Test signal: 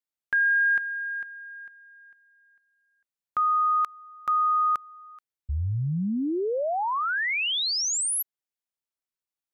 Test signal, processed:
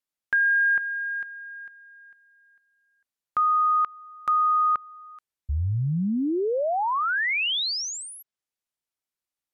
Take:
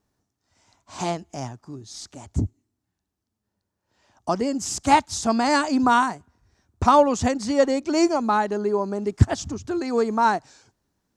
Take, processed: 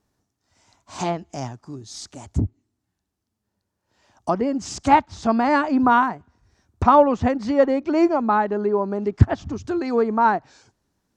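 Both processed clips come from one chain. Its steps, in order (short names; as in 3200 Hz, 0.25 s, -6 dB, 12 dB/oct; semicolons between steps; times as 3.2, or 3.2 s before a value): treble ducked by the level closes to 2200 Hz, closed at -20.5 dBFS; gain +2 dB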